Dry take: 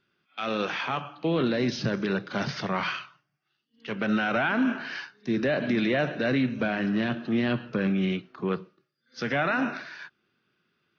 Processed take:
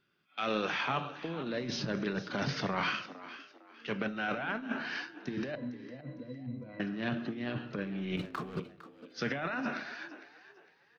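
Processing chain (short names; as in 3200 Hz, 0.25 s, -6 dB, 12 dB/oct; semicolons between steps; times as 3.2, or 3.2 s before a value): 8.17–8.6 sample leveller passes 3; negative-ratio compressor -28 dBFS, ratio -0.5; 5.55–6.8 octave resonator B, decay 0.11 s; frequency-shifting echo 0.456 s, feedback 32%, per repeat +70 Hz, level -15 dB; shoebox room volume 780 m³, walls furnished, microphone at 0.38 m; gain -5.5 dB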